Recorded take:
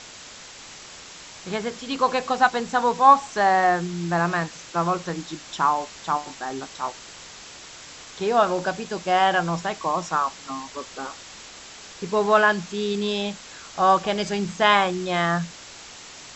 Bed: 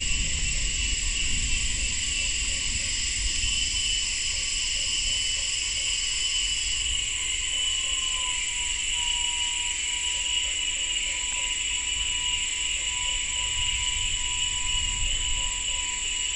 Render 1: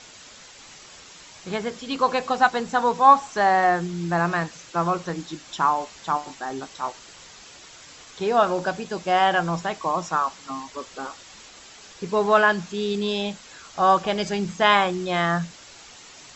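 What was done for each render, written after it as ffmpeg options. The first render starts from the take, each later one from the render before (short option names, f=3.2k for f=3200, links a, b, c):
-af "afftdn=nr=6:nf=-43"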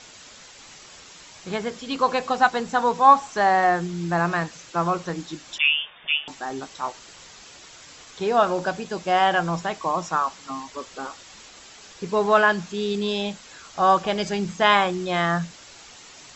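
-filter_complex "[0:a]asettb=1/sr,asplit=3[a][b][c];[a]atrim=end=5.584[d];[b]atrim=start=5.58:end=6.28,asetpts=PTS-STARTPTS,afade=t=in:d=0.004:c=qsin,afade=t=out:st=0.696:d=0.004:c=qsin,lowpass=f=3.1k:t=q:w=0.5098,lowpass=f=3.1k:t=q:w=0.6013,lowpass=f=3.1k:t=q:w=0.9,lowpass=f=3.1k:t=q:w=2.563,afreqshift=-3700[e];[c]atrim=start=6.276[f];[d][e]acrossfade=d=0.004:c1=hsin:c2=qsin[g];[g][f]acrossfade=d=0.004:c1=qsin:c2=hsin"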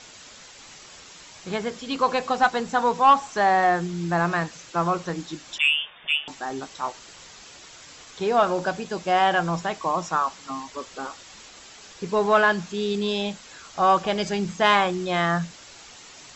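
-af "asoftclip=type=tanh:threshold=-7.5dB"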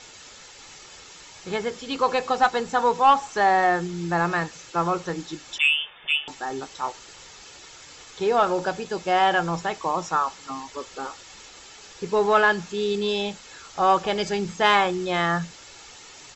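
-af "aecho=1:1:2.3:0.3"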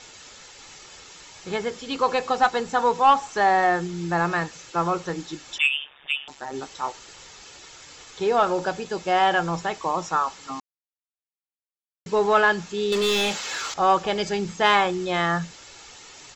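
-filter_complex "[0:a]asplit=3[a][b][c];[a]afade=t=out:st=5.66:d=0.02[d];[b]tremolo=f=140:d=0.974,afade=t=in:st=5.66:d=0.02,afade=t=out:st=6.53:d=0.02[e];[c]afade=t=in:st=6.53:d=0.02[f];[d][e][f]amix=inputs=3:normalize=0,asettb=1/sr,asplit=3[g][h][i];[g]atrim=end=12.924[j];[h]atrim=start=12.92:end=13.74,asetpts=PTS-STARTPTS,afade=t=in:d=0.004:c=qsin,afade=t=out:st=0.816:d=0.004:c=qsin,asplit=2[k][l];[l]highpass=f=720:p=1,volume=22dB,asoftclip=type=tanh:threshold=-16dB[m];[k][m]amix=inputs=2:normalize=0,lowpass=f=6.6k:p=1,volume=-6dB[n];[i]atrim=start=13.736[o];[j][n]acrossfade=d=0.004:c1=hsin:c2=qsin[p];[p][o]acrossfade=d=0.004:c1=qsin:c2=hsin,asplit=3[q][r][s];[q]atrim=end=10.6,asetpts=PTS-STARTPTS,afade=t=out:st=10.596:d=0.004:c=hsin[t];[r]atrim=start=10.6:end=12.06,asetpts=PTS-STARTPTS,volume=0[u];[s]atrim=start=12.06,asetpts=PTS-STARTPTS,afade=t=in:d=0.004:c=hsin[v];[t][u][v]concat=n=3:v=0:a=1"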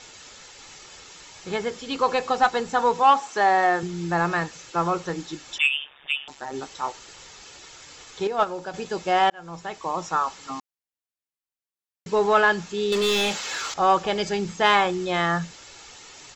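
-filter_complex "[0:a]asettb=1/sr,asplit=3[a][b][c];[a]atrim=end=3.034[d];[b]atrim=start=3.03:end=3.83,asetpts=PTS-STARTPTS,afade=t=in:d=0.004:c=qsin,afade=t=out:st=0.796:d=0.004:c=qsin,highpass=210[e];[c]atrim=start=3.826[f];[d][e]acrossfade=d=0.004:c1=hsin:c2=qsin[g];[g][f]acrossfade=d=0.004:c1=qsin:c2=hsin,asettb=1/sr,asplit=3[h][i][j];[h]atrim=end=8.274[k];[i]atrim=start=8.27:end=8.74,asetpts=PTS-STARTPTS,afade=t=in:d=0.004:c=qsin,afade=t=out:st=0.466:d=0.004:c=qsin,agate=range=-8dB:threshold=-19dB:ratio=16:release=100:detection=peak[l];[j]atrim=start=8.736[m];[k][l]acrossfade=d=0.004:c1=hsin:c2=qsin[n];[n][m]acrossfade=d=0.004:c1=qsin:c2=hsin,asplit=2[o][p];[o]atrim=end=9.3,asetpts=PTS-STARTPTS,afade=t=out:st=9.296:d=0.004:c=hsin[q];[p]atrim=start=9.3,asetpts=PTS-STARTPTS,afade=t=in:d=1.17:c=qsin[r];[q][r]concat=n=2:v=0:a=1"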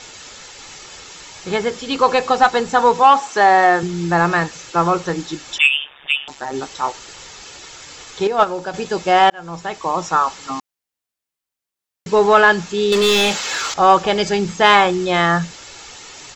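-af "volume=7.5dB,alimiter=limit=-2dB:level=0:latency=1"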